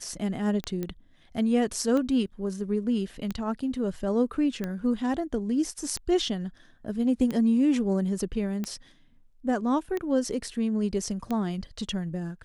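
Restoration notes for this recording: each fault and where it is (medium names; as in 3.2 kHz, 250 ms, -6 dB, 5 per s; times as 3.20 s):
tick 45 rpm -18 dBFS
0.83 s: pop -19 dBFS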